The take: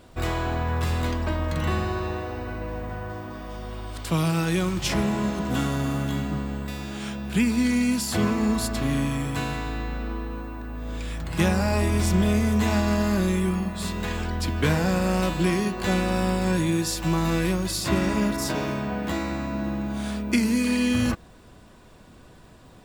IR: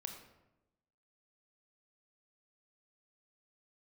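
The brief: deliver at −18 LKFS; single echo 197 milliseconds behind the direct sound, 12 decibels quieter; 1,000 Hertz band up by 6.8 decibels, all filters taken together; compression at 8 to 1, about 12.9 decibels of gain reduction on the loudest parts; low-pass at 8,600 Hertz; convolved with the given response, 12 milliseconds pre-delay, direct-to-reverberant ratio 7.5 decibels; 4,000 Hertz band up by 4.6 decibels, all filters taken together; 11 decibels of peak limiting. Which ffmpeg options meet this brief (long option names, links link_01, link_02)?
-filter_complex "[0:a]lowpass=8600,equalizer=frequency=1000:width_type=o:gain=8,equalizer=frequency=4000:width_type=o:gain=5.5,acompressor=threshold=-30dB:ratio=8,alimiter=level_in=3.5dB:limit=-24dB:level=0:latency=1,volume=-3.5dB,aecho=1:1:197:0.251,asplit=2[link_01][link_02];[1:a]atrim=start_sample=2205,adelay=12[link_03];[link_02][link_03]afir=irnorm=-1:irlink=0,volume=-5dB[link_04];[link_01][link_04]amix=inputs=2:normalize=0,volume=17dB"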